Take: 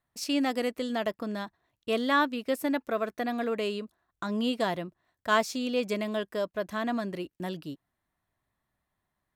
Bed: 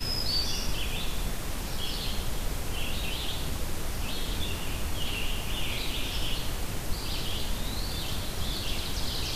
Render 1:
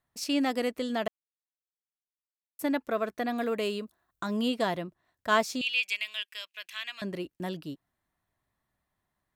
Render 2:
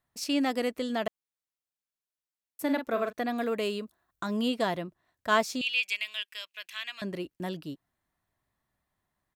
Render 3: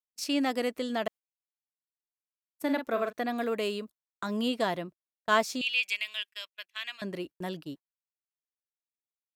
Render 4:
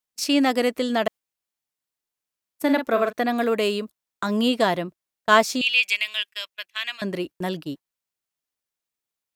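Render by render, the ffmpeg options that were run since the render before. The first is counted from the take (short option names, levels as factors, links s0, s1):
-filter_complex "[0:a]asettb=1/sr,asplit=3[s0][s1][s2];[s0]atrim=end=3.364[s3];[s1]atrim=start=3.36:end=4.48,asetpts=PTS-STARTPTS,afade=t=in:d=0.004:c=qsin,afade=t=out:st=1.116:d=0.004:c=qsin,highshelf=f=10000:g=10[s4];[s2]atrim=start=4.476[s5];[s3][s4]acrossfade=d=0.004:c1=hsin:c2=qsin[s6];[s6][s5]acrossfade=d=0.004:c1=qsin:c2=hsin,asettb=1/sr,asplit=3[s7][s8][s9];[s7]atrim=end=5.614[s10];[s8]atrim=start=5.61:end=7.02,asetpts=PTS-STARTPTS,afade=t=in:d=0.004:c=qsin,afade=t=out:st=1.406:d=0.004:c=qsin,highpass=f=2600:t=q:w=4.9[s11];[s9]atrim=start=7.016[s12];[s10][s11]acrossfade=d=0.004:c1=hsin:c2=qsin[s13];[s13][s12]acrossfade=d=0.004:c1=qsin:c2=hsin,asplit=3[s14][s15][s16];[s14]atrim=end=1.08,asetpts=PTS-STARTPTS,afade=t=out:st=1.076:d=0.004:c=hsin[s17];[s15]atrim=start=1.08:end=2.59,asetpts=PTS-STARTPTS,volume=0[s18];[s16]atrim=start=2.59,asetpts=PTS-STARTPTS,afade=t=in:d=0.004:c=hsin[s19];[s17][s18][s19]concat=n=3:v=0:a=1"
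-filter_complex "[0:a]asplit=3[s0][s1][s2];[s0]afade=t=out:st=2.67:d=0.02[s3];[s1]asplit=2[s4][s5];[s5]adelay=44,volume=0.422[s6];[s4][s6]amix=inputs=2:normalize=0,afade=t=in:st=2.67:d=0.02,afade=t=out:st=3.11:d=0.02[s7];[s2]afade=t=in:st=3.11:d=0.02[s8];[s3][s7][s8]amix=inputs=3:normalize=0"
-af "agate=range=0.0126:threshold=0.00794:ratio=16:detection=peak,lowshelf=f=110:g=-7.5"
-af "volume=2.66"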